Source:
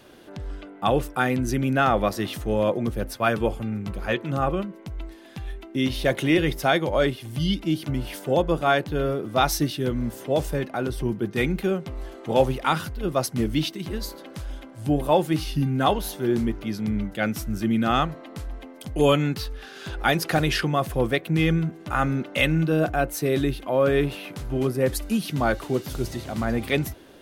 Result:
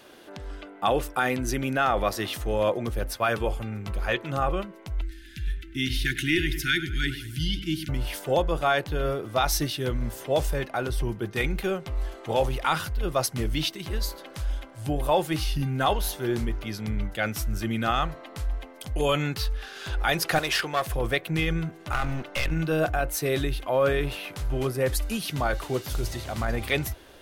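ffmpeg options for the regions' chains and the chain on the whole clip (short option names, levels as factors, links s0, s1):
-filter_complex "[0:a]asettb=1/sr,asplit=3[s0][s1][s2];[s0]atrim=end=5.014[s3];[s1]atrim=start=5.01:end=7.89,asetpts=PTS-STARTPTS,afade=t=in:d=0.004:c=qsin,afade=t=out:st=2.876:d=0.004:c=qsin,asuperstop=centerf=730:order=20:qfactor=0.69,asplit=2[s4][s5];[s5]adelay=101,lowpass=f=2700:p=1,volume=0.251,asplit=2[s6][s7];[s7]adelay=101,lowpass=f=2700:p=1,volume=0.5,asplit=2[s8][s9];[s9]adelay=101,lowpass=f=2700:p=1,volume=0.5,asplit=2[s10][s11];[s11]adelay=101,lowpass=f=2700:p=1,volume=0.5,asplit=2[s12][s13];[s13]adelay=101,lowpass=f=2700:p=1,volume=0.5[s14];[s4][s6][s8][s10][s12][s14]amix=inputs=6:normalize=0,atrim=end_sample=127008[s15];[s2]atrim=start=7.886[s16];[s3][s15]acrossfade=d=0.004:c1=hsin:c2=qsin[s17];[s17][s16]acrossfade=d=0.004:c1=qsin:c2=hsin,asettb=1/sr,asplit=3[s18][s19][s20];[s18]atrim=end=20.394[s21];[s19]atrim=start=20.39:end=20.86,asetpts=PTS-STARTPTS,afade=t=in:d=0.004:c=qsin,afade=t=out:st=0.466:d=0.004:c=qsin,bass=f=250:g=-9,treble=f=4000:g=0,aeval=exprs='clip(val(0),-1,0.0562)':c=same,highpass=f=150:p=1[s22];[s20]atrim=start=20.856[s23];[s21][s22]acrossfade=d=0.004:c1=hsin:c2=qsin[s24];[s24][s23]acrossfade=d=0.004:c1=qsin:c2=hsin,asettb=1/sr,asplit=3[s25][s26][s27];[s25]atrim=end=21.924[s28];[s26]atrim=start=21.92:end=22.51,asetpts=PTS-STARTPTS,afade=t=in:d=0.004:c=qsin,afade=t=out:st=0.586:d=0.004:c=qsin,asubboost=boost=11.5:cutoff=100,aeval=exprs='clip(val(0),-1,0.0398)':c=same[s29];[s27]atrim=start=22.506[s30];[s28][s29]acrossfade=d=0.004:c1=hsin:c2=qsin[s31];[s31][s30]acrossfade=d=0.004:c1=qsin:c2=hsin,asubboost=boost=7:cutoff=81,alimiter=limit=0.224:level=0:latency=1:release=17,lowshelf=f=240:g=-11,volume=1.26"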